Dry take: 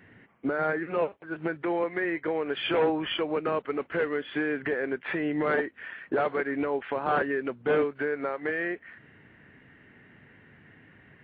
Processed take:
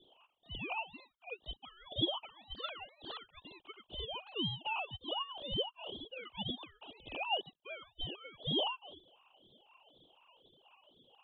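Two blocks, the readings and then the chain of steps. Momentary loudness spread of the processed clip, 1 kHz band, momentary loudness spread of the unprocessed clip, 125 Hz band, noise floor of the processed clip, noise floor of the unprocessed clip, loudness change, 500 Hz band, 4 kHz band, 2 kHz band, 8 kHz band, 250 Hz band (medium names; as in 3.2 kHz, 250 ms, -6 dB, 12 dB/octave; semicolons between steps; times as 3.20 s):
16 LU, -10.5 dB, 5 LU, -5.5 dB, -76 dBFS, -57 dBFS, -10.5 dB, -18.0 dB, +3.5 dB, -14.5 dB, no reading, -15.0 dB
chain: formants replaced by sine waves; Butterworth band-pass 1.9 kHz, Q 3; ring modulator with a swept carrier 1.2 kHz, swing 30%, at 2 Hz; trim +3 dB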